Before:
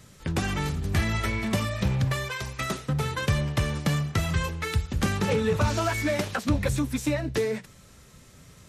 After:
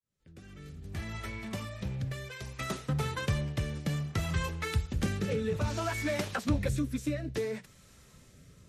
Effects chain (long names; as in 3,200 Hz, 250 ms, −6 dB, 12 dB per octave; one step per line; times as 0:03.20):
fade in at the beginning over 2.89 s
rotating-speaker cabinet horn 0.6 Hz
level −4 dB